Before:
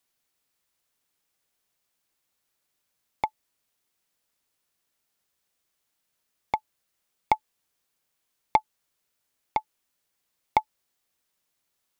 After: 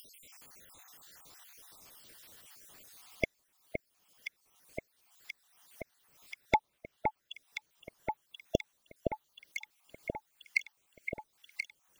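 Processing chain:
time-frequency cells dropped at random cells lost 67%
0:06.55–0:07.34: low-pass filter 4,200 Hz 24 dB per octave
delay that swaps between a low-pass and a high-pass 516 ms, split 2,000 Hz, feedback 79%, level −4.5 dB
upward compression, threshold −46 dBFS
level +6.5 dB

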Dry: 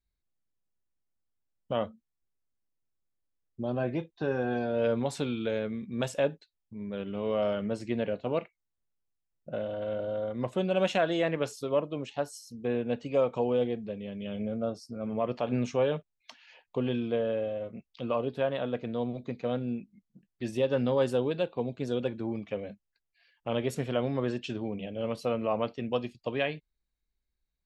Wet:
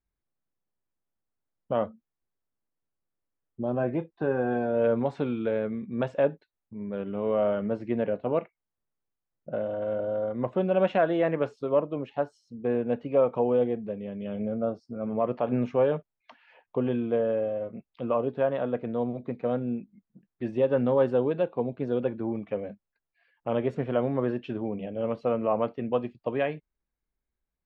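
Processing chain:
low-pass filter 1,600 Hz 12 dB per octave
low-shelf EQ 100 Hz −8 dB
level +4 dB

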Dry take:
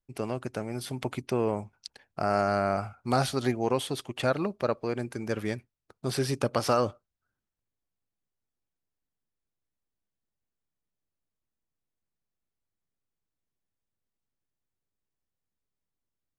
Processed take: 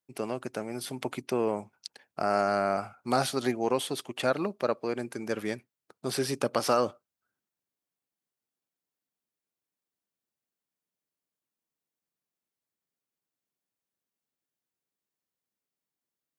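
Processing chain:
high-pass filter 190 Hz 12 dB per octave
high-shelf EQ 9,600 Hz +4.5 dB

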